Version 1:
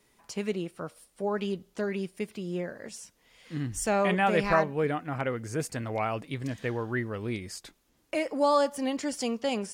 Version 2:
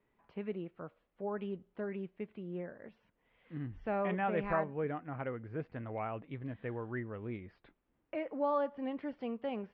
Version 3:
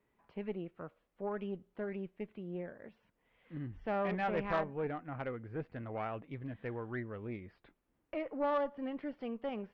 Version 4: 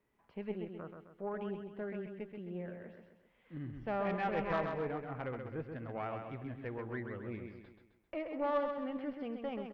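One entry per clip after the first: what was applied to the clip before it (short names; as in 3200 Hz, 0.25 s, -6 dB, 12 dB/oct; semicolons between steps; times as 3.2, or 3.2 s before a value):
Bessel low-pass 1800 Hz, order 8; gain -8 dB
tube stage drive 26 dB, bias 0.55; gain +2 dB
feedback echo 0.131 s, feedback 45%, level -6 dB; gain -1.5 dB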